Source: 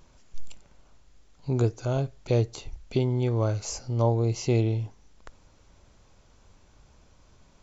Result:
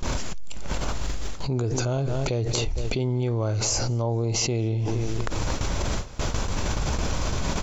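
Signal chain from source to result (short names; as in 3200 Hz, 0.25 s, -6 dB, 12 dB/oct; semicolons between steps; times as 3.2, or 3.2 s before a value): gate with hold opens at -47 dBFS; on a send: feedback echo 0.23 s, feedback 39%, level -23 dB; on the sum: fast leveller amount 100%; gain -5 dB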